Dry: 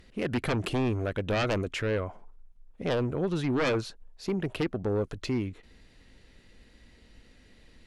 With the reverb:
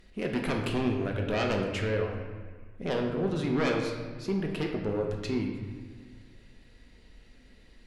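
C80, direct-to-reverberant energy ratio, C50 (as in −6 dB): 5.5 dB, 1.0 dB, 4.0 dB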